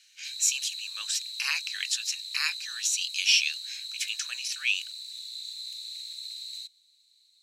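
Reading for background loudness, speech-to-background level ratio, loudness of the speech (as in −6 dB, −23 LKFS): −36.5 LKFS, 8.5 dB, −28.0 LKFS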